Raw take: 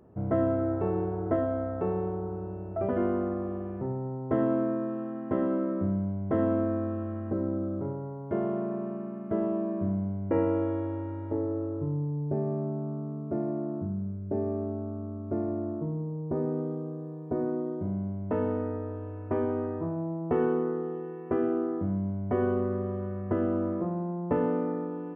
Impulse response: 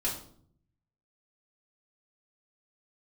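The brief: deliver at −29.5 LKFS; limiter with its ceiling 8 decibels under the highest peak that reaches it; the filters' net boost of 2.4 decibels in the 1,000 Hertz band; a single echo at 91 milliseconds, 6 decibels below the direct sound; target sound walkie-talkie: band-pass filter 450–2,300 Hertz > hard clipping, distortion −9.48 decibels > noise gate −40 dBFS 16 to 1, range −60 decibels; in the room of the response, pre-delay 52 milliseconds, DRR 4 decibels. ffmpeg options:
-filter_complex "[0:a]equalizer=frequency=1000:width_type=o:gain=4,alimiter=limit=-20.5dB:level=0:latency=1,aecho=1:1:91:0.501,asplit=2[link_01][link_02];[1:a]atrim=start_sample=2205,adelay=52[link_03];[link_02][link_03]afir=irnorm=-1:irlink=0,volume=-9.5dB[link_04];[link_01][link_04]amix=inputs=2:normalize=0,highpass=450,lowpass=2300,asoftclip=type=hard:threshold=-31dB,agate=range=-60dB:threshold=-40dB:ratio=16,volume=6dB"

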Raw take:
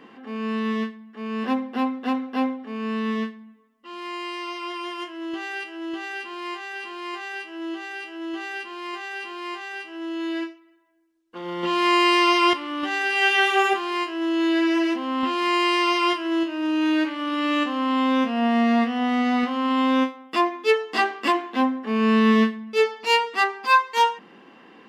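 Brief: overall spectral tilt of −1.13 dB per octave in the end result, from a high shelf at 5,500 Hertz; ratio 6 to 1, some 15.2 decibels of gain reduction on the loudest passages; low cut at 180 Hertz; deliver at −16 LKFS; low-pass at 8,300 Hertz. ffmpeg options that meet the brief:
ffmpeg -i in.wav -af "highpass=180,lowpass=8300,highshelf=frequency=5500:gain=4,acompressor=threshold=-30dB:ratio=6,volume=17dB" out.wav

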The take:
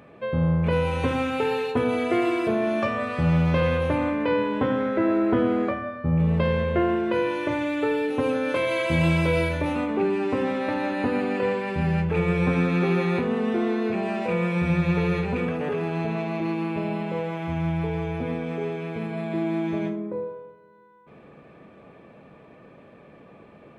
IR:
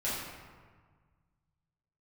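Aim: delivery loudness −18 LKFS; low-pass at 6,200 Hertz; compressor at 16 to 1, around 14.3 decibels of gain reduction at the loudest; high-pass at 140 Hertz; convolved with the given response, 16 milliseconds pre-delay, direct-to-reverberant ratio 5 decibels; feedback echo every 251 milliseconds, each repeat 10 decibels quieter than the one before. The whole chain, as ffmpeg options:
-filter_complex "[0:a]highpass=140,lowpass=6200,acompressor=threshold=-33dB:ratio=16,aecho=1:1:251|502|753|1004:0.316|0.101|0.0324|0.0104,asplit=2[link_01][link_02];[1:a]atrim=start_sample=2205,adelay=16[link_03];[link_02][link_03]afir=irnorm=-1:irlink=0,volume=-12dB[link_04];[link_01][link_04]amix=inputs=2:normalize=0,volume=18dB"

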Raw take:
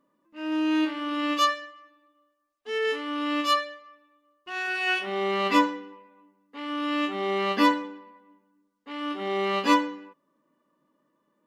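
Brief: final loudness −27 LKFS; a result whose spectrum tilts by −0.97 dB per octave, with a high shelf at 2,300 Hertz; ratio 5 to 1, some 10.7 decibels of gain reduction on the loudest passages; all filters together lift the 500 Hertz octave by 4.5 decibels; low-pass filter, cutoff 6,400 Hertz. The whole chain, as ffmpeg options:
ffmpeg -i in.wav -af "lowpass=6400,equalizer=frequency=500:width_type=o:gain=5.5,highshelf=frequency=2300:gain=5.5,acompressor=threshold=-25dB:ratio=5,volume=2.5dB" out.wav

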